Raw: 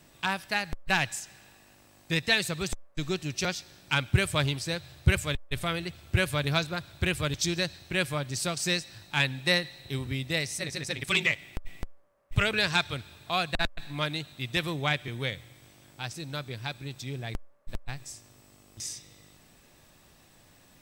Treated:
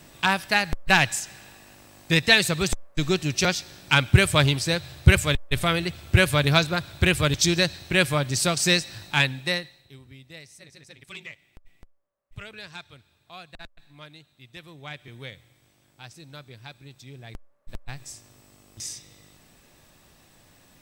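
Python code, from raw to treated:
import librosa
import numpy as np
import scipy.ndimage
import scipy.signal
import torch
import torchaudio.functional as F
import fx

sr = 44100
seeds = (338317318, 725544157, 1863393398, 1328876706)

y = fx.gain(x, sr, db=fx.line((9.07, 7.5), (9.63, -3.5), (9.96, -15.0), (14.66, -15.0), (15.12, -7.5), (17.14, -7.5), (18.09, 2.0)))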